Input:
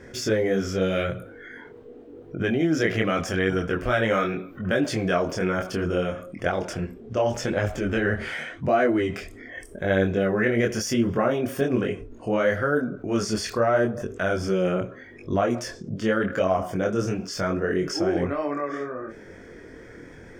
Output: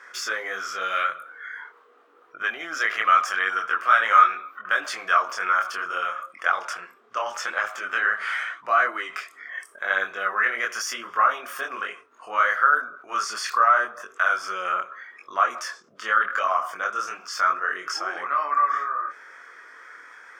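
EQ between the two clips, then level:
high-pass with resonance 1,200 Hz, resonance Q 5.5
0.0 dB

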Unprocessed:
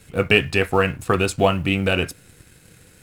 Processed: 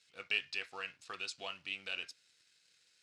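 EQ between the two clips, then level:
resonant band-pass 4,800 Hz, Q 1.9
high-frequency loss of the air 61 metres
−6.0 dB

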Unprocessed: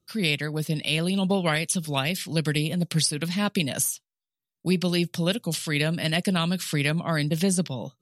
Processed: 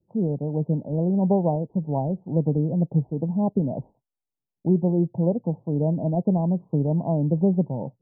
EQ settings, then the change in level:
Butterworth low-pass 920 Hz 96 dB per octave
+3.5 dB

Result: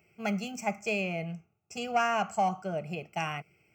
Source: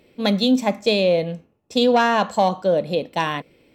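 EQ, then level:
high-pass filter 120 Hz 12 dB per octave
phaser with its sweep stopped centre 1,000 Hz, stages 6
phaser with its sweep stopped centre 2,600 Hz, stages 8
0.0 dB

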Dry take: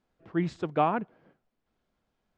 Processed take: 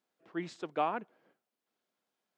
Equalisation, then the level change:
high-pass filter 280 Hz 12 dB per octave
high-shelf EQ 3,400 Hz +8.5 dB
−6.5 dB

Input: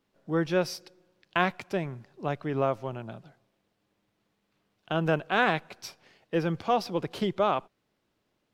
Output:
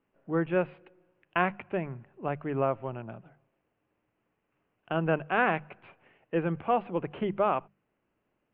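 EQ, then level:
elliptic low-pass filter 2,800 Hz, stop band 50 dB
high-frequency loss of the air 140 metres
mains-hum notches 50/100/150/200 Hz
0.0 dB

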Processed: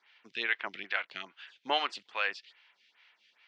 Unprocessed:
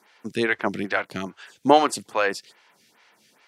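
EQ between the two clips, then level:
resonant band-pass 3,000 Hz, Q 1.7
high-frequency loss of the air 160 metres
+2.0 dB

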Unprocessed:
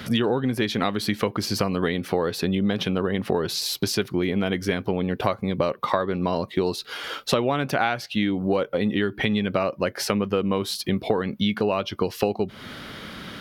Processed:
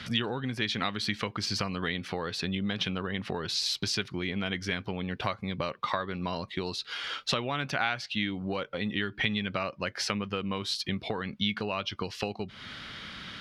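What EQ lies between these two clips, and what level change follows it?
high-frequency loss of the air 100 metres
guitar amp tone stack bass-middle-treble 5-5-5
+8.5 dB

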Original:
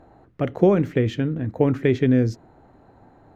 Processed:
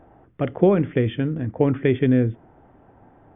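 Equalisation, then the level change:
linear-phase brick-wall low-pass 3,600 Hz
0.0 dB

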